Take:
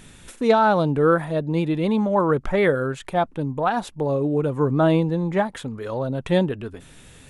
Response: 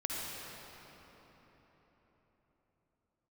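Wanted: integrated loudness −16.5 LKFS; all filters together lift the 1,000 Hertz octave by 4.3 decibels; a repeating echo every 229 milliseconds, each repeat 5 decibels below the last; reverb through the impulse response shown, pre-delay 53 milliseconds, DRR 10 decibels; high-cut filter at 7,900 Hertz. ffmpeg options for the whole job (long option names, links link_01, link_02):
-filter_complex "[0:a]lowpass=7900,equalizer=frequency=1000:width_type=o:gain=5.5,aecho=1:1:229|458|687|916|1145|1374|1603:0.562|0.315|0.176|0.0988|0.0553|0.031|0.0173,asplit=2[link_01][link_02];[1:a]atrim=start_sample=2205,adelay=53[link_03];[link_02][link_03]afir=irnorm=-1:irlink=0,volume=-14.5dB[link_04];[link_01][link_04]amix=inputs=2:normalize=0,volume=1.5dB"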